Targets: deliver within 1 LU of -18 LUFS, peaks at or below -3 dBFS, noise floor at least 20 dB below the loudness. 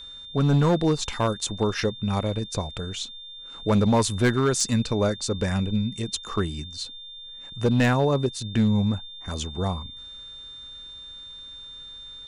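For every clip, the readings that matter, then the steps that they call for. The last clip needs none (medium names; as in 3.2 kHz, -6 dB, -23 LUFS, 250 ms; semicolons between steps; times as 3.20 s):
clipped samples 0.9%; clipping level -14.5 dBFS; steady tone 3.6 kHz; tone level -39 dBFS; loudness -25.0 LUFS; peak level -14.5 dBFS; loudness target -18.0 LUFS
-> clip repair -14.5 dBFS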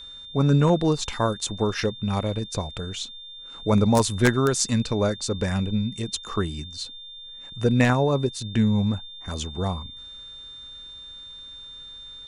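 clipped samples 0.0%; steady tone 3.6 kHz; tone level -39 dBFS
-> band-stop 3.6 kHz, Q 30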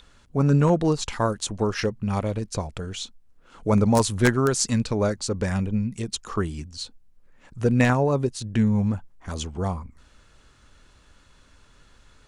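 steady tone not found; loudness -24.0 LUFS; peak level -5.5 dBFS; loudness target -18.0 LUFS
-> trim +6 dB; peak limiter -3 dBFS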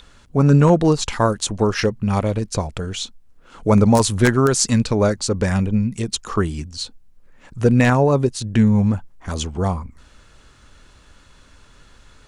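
loudness -18.5 LUFS; peak level -3.0 dBFS; noise floor -50 dBFS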